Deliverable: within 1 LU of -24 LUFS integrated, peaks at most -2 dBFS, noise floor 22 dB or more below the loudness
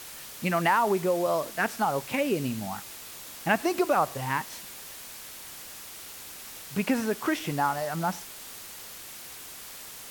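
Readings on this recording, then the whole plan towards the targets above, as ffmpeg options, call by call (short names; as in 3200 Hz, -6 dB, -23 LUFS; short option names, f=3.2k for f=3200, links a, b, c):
noise floor -43 dBFS; noise floor target -50 dBFS; loudness -28.0 LUFS; peak -10.0 dBFS; loudness target -24.0 LUFS
-> -af "afftdn=nr=7:nf=-43"
-af "volume=4dB"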